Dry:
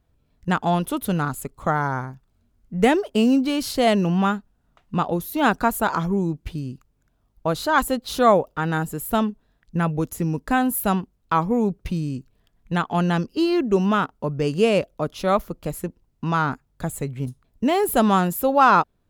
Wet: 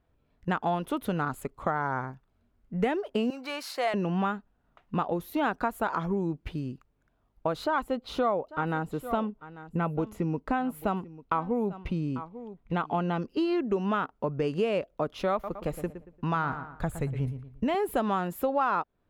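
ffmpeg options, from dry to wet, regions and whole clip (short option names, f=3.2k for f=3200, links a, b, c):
-filter_complex "[0:a]asettb=1/sr,asplit=3[a][b][c];[a]atrim=end=3.304[d];[b]atrim=start=3.3:end=3.94,asetpts=PTS-STARTPTS,afade=t=in:d=0.004:c=qsin,afade=t=out:st=0.636:d=0.004:c=qsin,highpass=800,acompressor=mode=upward:threshold=-31dB:ratio=2.5:attack=3.2:release=140:knee=2.83:detection=peak,equalizer=f=3.2k:w=4:g=-8[e];[c]atrim=start=3.936[f];[d][e]acrossfade=d=0.004:c1=hsin:c2=qsin[g];[g][f]acrossfade=d=0.004:c1=qsin:c2=hsin,asettb=1/sr,asplit=3[h][i][j];[h]atrim=end=7.644[k];[i]atrim=start=7.64:end=13.22,asetpts=PTS-STARTPTS,afade=t=in:d=0.004:c=qsin,afade=t=out:st=5.576:d=0.004:c=qsin,aemphasis=mode=reproduction:type=cd,bandreject=f=1.7k:w=6.6,aecho=1:1:843:0.106,atrim=end_sample=246078[l];[j]atrim=start=13.216[m];[k][l]acrossfade=d=0.004:c1=hsin:c2=qsin[n];[n][m]acrossfade=d=0.004:c1=qsin:c2=hsin,asettb=1/sr,asplit=3[o][p][q];[o]atrim=end=15.324[r];[p]atrim=start=15.32:end=17.75,asetpts=PTS-STARTPTS,afade=t=in:d=0.004:c=qsin,afade=t=out:st=2.426:d=0.004:c=qsin,asubboost=boost=6:cutoff=140,asplit=2[s][t];[t]adelay=115,lowpass=f=3k:p=1,volume=-12dB,asplit=2[u][v];[v]adelay=115,lowpass=f=3k:p=1,volume=0.35,asplit=2[w][x];[x]adelay=115,lowpass=f=3k:p=1,volume=0.35,asplit=2[y][z];[z]adelay=115,lowpass=f=3k:p=1,volume=0.35[aa];[s][u][w][y][aa]amix=inputs=5:normalize=0,atrim=end_sample=107163[ab];[q]atrim=start=17.746[ac];[r][ab]acrossfade=d=0.004:c1=hsin:c2=qsin[ad];[ad][ac]acrossfade=d=0.004:c1=qsin:c2=hsin,bass=f=250:g=-6,treble=f=4k:g=-13,acompressor=threshold=-25dB:ratio=4"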